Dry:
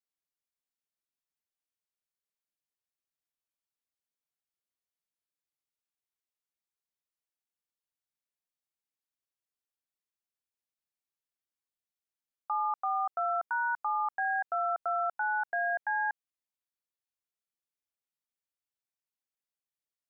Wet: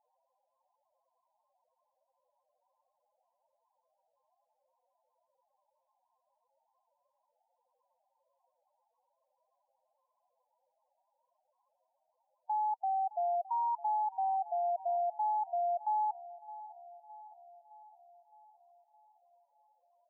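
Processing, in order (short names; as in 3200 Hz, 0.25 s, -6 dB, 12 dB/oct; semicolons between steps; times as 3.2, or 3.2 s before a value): upward compressor, threshold -36 dBFS; brick-wall FIR band-pass 470–1100 Hz; loudest bins only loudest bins 8; on a send: darkening echo 0.614 s, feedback 80%, low-pass 860 Hz, level -15.5 dB; on the sum: loudest bins only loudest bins 8; gain +1.5 dB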